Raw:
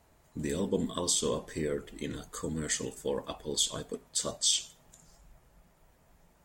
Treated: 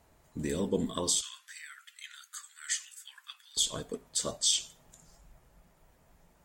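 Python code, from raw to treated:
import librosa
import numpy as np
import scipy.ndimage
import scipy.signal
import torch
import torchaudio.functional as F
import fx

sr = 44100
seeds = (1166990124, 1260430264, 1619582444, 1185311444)

y = fx.ellip_highpass(x, sr, hz=1400.0, order=4, stop_db=70, at=(1.21, 3.57))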